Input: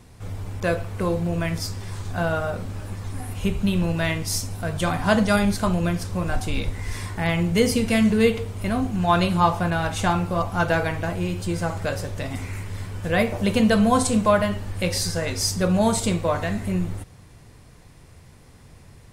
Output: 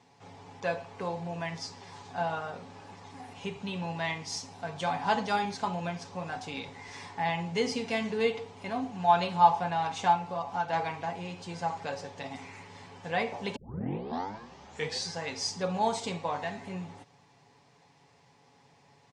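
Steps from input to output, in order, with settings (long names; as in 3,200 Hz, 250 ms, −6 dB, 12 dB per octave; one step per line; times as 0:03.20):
comb filter 7.1 ms, depth 47%
0:10.14–0:10.73: downward compressor, threshold −21 dBFS, peak gain reduction 6.5 dB
0:13.56: tape start 1.51 s
loudspeaker in its box 230–6,600 Hz, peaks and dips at 320 Hz −7 dB, 850 Hz +9 dB, 1,400 Hz −5 dB
notch filter 600 Hz, Q 12
level −8 dB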